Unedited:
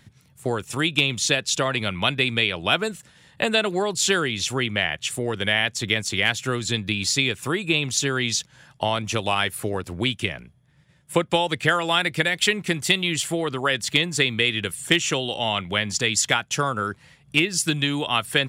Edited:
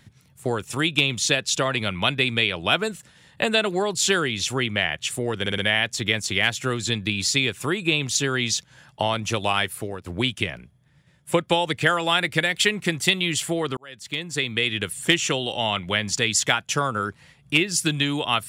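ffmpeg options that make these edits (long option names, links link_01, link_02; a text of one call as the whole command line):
ffmpeg -i in.wav -filter_complex "[0:a]asplit=6[link_01][link_02][link_03][link_04][link_05][link_06];[link_01]atrim=end=5.462[link_07];[link_02]atrim=start=5.398:end=5.462[link_08];[link_03]atrim=start=5.398:end=5.462[link_09];[link_04]atrim=start=5.398:end=9.88,asetpts=PTS-STARTPTS,afade=type=out:start_time=4.032:duration=0.45:silence=0.316228[link_10];[link_05]atrim=start=9.88:end=13.59,asetpts=PTS-STARTPTS,afade=type=in:duration=0.004:curve=hsin:silence=0.316228,afade=type=out:start_time=3.706:duration=0.004:curve=hsin[link_11];[link_06]atrim=start=13.59,asetpts=PTS-STARTPTS,afade=type=in:duration=1.05[link_12];[link_07][link_08]acrossfade=duration=0.004:curve1=hsin:curve2=hsin[link_13];[link_13][link_09]acrossfade=duration=0.004:curve1=hsin:curve2=hsin[link_14];[link_10][link_11][link_12]concat=n=3:v=0:a=1[link_15];[link_14][link_15]acrossfade=duration=0.004:curve1=hsin:curve2=hsin" out.wav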